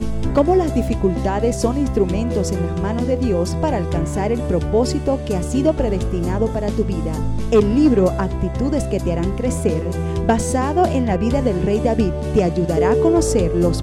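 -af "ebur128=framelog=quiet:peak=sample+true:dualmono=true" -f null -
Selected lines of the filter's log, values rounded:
Integrated loudness:
  I:         -15.8 LUFS
  Threshold: -25.8 LUFS
Loudness range:
  LRA:         2.4 LU
  Threshold: -36.1 LUFS
  LRA low:   -17.0 LUFS
  LRA high:  -14.6 LUFS
Sample peak:
  Peak:       -3.5 dBFS
True peak:
  Peak:       -3.4 dBFS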